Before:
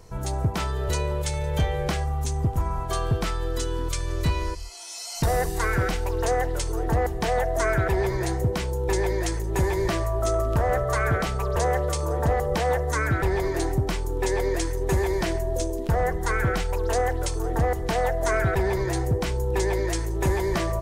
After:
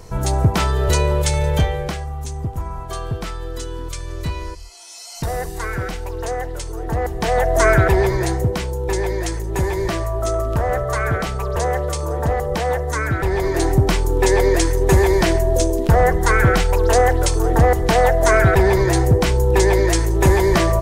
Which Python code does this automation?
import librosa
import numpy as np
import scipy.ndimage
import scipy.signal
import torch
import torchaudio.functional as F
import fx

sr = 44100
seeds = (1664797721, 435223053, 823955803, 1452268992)

y = fx.gain(x, sr, db=fx.line((1.47, 9.0), (2.0, -1.0), (6.78, -1.0), (7.67, 10.0), (8.75, 3.0), (13.19, 3.0), (13.83, 9.5)))